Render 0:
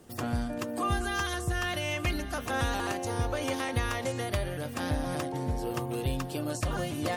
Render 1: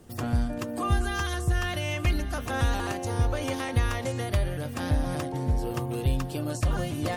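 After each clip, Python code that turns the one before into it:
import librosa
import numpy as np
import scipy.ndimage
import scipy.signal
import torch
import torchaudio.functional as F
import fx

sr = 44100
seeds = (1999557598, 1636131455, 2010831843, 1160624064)

y = fx.low_shelf(x, sr, hz=130.0, db=9.5)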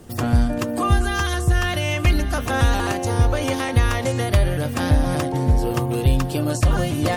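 y = fx.rider(x, sr, range_db=10, speed_s=0.5)
y = F.gain(torch.from_numpy(y), 8.0).numpy()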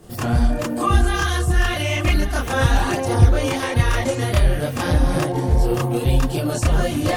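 y = fx.chorus_voices(x, sr, voices=4, hz=1.2, base_ms=28, depth_ms=3.8, mix_pct=60)
y = F.gain(torch.from_numpy(y), 4.0).numpy()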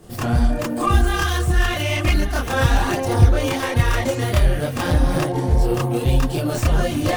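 y = fx.tracing_dist(x, sr, depth_ms=0.062)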